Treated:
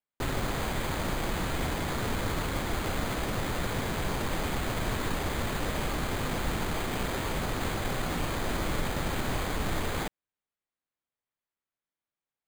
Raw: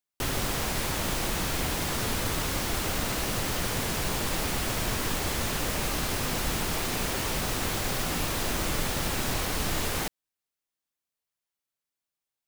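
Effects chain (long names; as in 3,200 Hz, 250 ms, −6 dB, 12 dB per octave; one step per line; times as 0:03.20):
bad sample-rate conversion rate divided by 8×, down filtered, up hold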